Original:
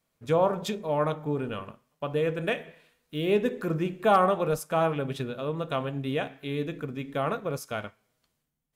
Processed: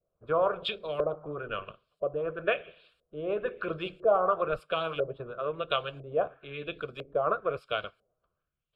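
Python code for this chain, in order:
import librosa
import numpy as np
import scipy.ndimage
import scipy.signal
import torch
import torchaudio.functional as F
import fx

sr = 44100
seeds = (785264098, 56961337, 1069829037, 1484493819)

y = fx.filter_lfo_lowpass(x, sr, shape='saw_up', hz=1.0, low_hz=520.0, high_hz=6700.0, q=1.7)
y = fx.fixed_phaser(y, sr, hz=1300.0, stages=8)
y = fx.hpss(y, sr, part='harmonic', gain_db=-13)
y = y * 10.0 ** (5.0 / 20.0)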